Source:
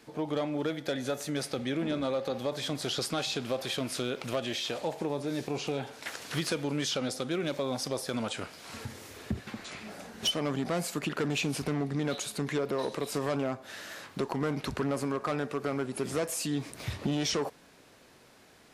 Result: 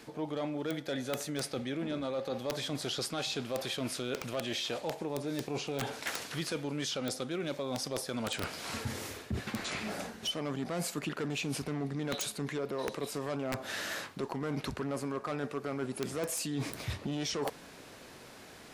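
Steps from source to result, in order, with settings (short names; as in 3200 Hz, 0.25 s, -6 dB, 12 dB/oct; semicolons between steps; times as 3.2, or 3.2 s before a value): reverse; compressor 16:1, threshold -38 dBFS, peak gain reduction 13.5 dB; reverse; wrapped overs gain 30.5 dB; gain +6.5 dB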